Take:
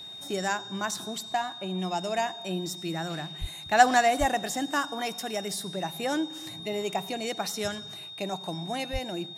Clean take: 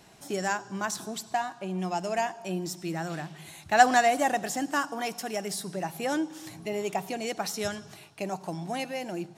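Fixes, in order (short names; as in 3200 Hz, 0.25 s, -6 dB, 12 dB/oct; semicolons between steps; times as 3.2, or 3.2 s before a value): notch 3700 Hz, Q 30; de-plosive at 3.4/4.19/8.92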